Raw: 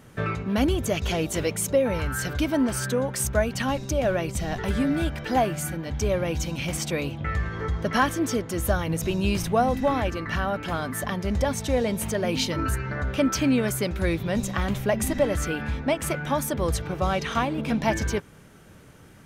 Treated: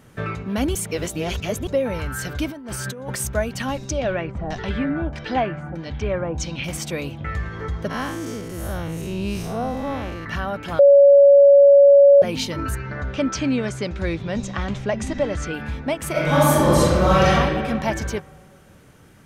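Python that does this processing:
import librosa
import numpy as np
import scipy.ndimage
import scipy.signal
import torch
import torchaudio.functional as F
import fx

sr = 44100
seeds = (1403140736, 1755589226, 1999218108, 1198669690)

y = fx.over_compress(x, sr, threshold_db=-32.0, ratio=-1.0, at=(2.51, 3.16))
y = fx.filter_lfo_lowpass(y, sr, shape='saw_down', hz=1.6, low_hz=760.0, high_hz=7100.0, q=1.6, at=(3.88, 6.64))
y = fx.spec_blur(y, sr, span_ms=159.0, at=(7.89, 10.24), fade=0.02)
y = fx.lowpass(y, sr, hz=7200.0, slope=24, at=(12.75, 15.54))
y = fx.reverb_throw(y, sr, start_s=16.11, length_s=1.18, rt60_s=1.9, drr_db=-10.5)
y = fx.edit(y, sr, fx.reverse_span(start_s=0.75, length_s=0.92),
    fx.bleep(start_s=10.79, length_s=1.43, hz=563.0, db=-7.0), tone=tone)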